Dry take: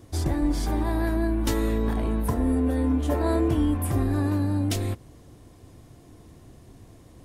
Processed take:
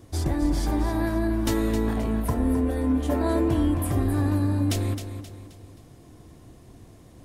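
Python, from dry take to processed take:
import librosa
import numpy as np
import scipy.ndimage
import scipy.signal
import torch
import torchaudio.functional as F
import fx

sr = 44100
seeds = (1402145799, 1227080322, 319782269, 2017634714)

y = x + fx.echo_feedback(x, sr, ms=264, feedback_pct=41, wet_db=-9.5, dry=0)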